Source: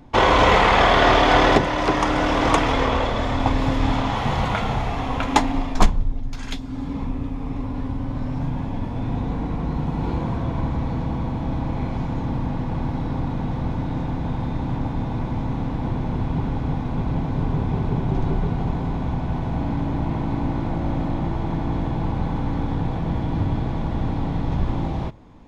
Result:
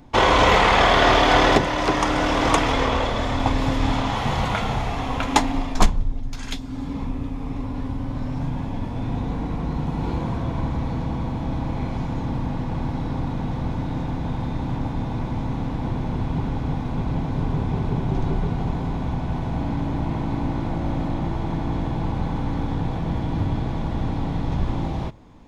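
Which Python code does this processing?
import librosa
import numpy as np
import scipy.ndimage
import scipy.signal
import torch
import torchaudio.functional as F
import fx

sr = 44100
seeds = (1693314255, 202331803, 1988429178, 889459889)

y = fx.high_shelf(x, sr, hz=4300.0, db=6.0)
y = y * librosa.db_to_amplitude(-1.0)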